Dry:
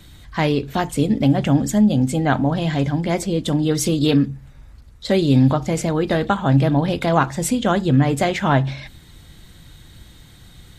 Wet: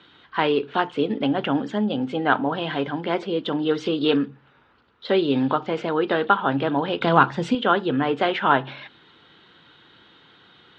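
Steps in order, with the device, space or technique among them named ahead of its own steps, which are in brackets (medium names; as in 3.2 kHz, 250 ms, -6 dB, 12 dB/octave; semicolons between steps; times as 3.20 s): phone earpiece (cabinet simulation 330–3500 Hz, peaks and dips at 420 Hz +5 dB, 620 Hz -4 dB, 980 Hz +4 dB, 1.4 kHz +7 dB, 2.1 kHz -4 dB, 3 kHz +5 dB); 7.01–7.55 s: tone controls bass +12 dB, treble +8 dB; trim -1 dB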